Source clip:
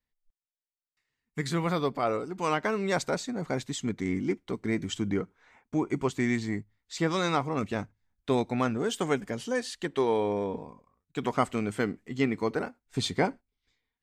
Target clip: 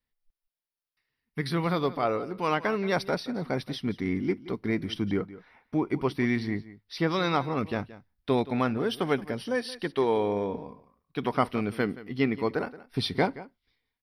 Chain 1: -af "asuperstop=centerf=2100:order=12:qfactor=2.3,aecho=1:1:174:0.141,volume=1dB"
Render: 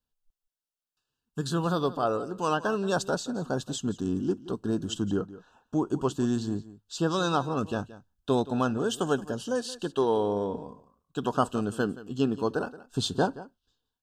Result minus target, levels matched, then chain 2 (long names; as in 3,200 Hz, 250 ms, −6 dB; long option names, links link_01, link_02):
8,000 Hz band +11.0 dB
-af "asuperstop=centerf=7200:order=12:qfactor=2.3,aecho=1:1:174:0.141,volume=1dB"